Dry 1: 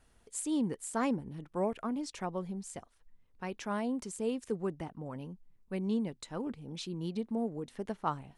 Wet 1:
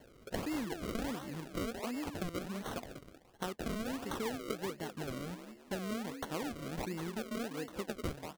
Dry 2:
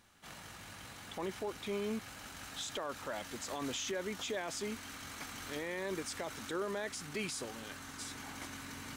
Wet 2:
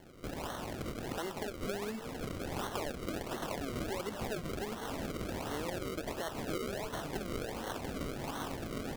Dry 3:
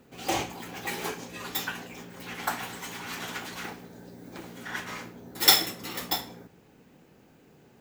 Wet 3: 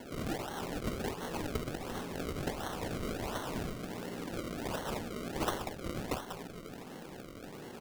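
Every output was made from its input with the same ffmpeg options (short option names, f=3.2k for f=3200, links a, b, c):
-filter_complex "[0:a]acompressor=threshold=-47dB:ratio=6,highpass=f=250:p=1,asplit=2[a][b];[b]asplit=4[c][d][e][f];[c]adelay=192,afreqshift=43,volume=-8.5dB[g];[d]adelay=384,afreqshift=86,volume=-16.9dB[h];[e]adelay=576,afreqshift=129,volume=-25.3dB[i];[f]adelay=768,afreqshift=172,volume=-33.7dB[j];[g][h][i][j]amix=inputs=4:normalize=0[k];[a][k]amix=inputs=2:normalize=0,acrusher=samples=35:mix=1:aa=0.000001:lfo=1:lforange=35:lforate=1.4,volume=12dB"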